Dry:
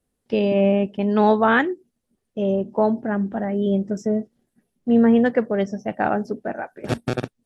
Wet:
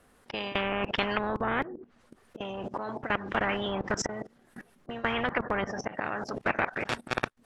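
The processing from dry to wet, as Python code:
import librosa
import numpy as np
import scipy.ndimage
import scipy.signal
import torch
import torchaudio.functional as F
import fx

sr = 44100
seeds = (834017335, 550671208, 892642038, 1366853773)

y = fx.auto_swell(x, sr, attack_ms=608.0)
y = fx.peak_eq(y, sr, hz=1300.0, db=14.5, octaves=2.2)
y = fx.env_lowpass_down(y, sr, base_hz=360.0, full_db=-9.5)
y = fx.level_steps(y, sr, step_db=21)
y = fx.spectral_comp(y, sr, ratio=4.0)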